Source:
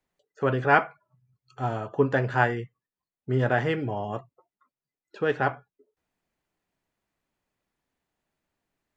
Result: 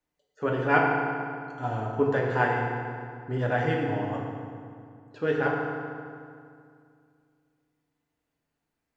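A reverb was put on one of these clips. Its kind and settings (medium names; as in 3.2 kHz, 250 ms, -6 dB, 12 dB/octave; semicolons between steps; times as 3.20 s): FDN reverb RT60 2.3 s, low-frequency decay 1.25×, high-frequency decay 0.7×, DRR -2 dB; trim -5 dB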